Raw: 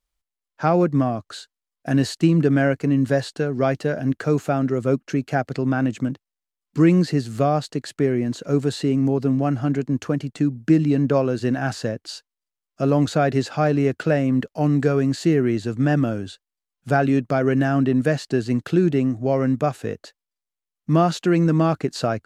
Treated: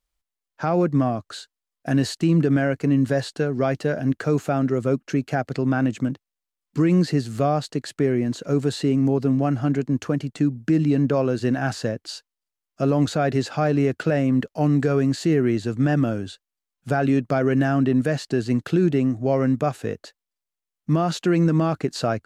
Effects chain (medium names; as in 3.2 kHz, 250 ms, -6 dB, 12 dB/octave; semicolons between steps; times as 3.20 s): peak limiter -11 dBFS, peak gain reduction 5.5 dB